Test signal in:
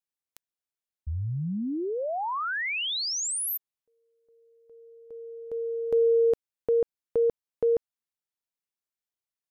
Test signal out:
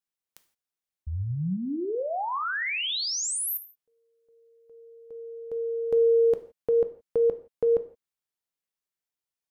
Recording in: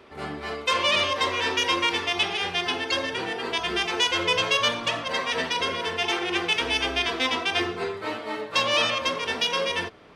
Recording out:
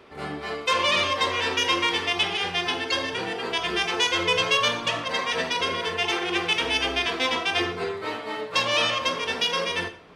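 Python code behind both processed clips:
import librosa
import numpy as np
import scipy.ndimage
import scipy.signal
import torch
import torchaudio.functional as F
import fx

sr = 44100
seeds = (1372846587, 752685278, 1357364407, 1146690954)

y = fx.rev_gated(x, sr, seeds[0], gate_ms=190, shape='falling', drr_db=9.5)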